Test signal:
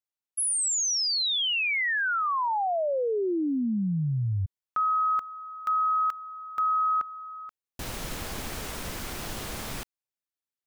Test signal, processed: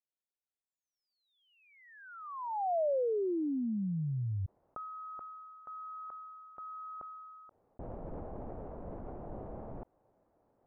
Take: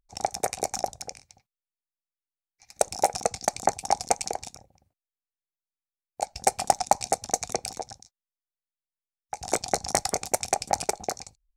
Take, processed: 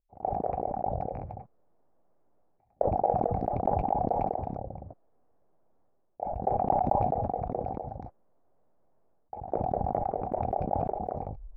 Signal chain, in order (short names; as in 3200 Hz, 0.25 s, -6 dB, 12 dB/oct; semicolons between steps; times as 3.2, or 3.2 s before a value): ladder low-pass 840 Hz, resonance 35%; sustainer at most 23 dB/s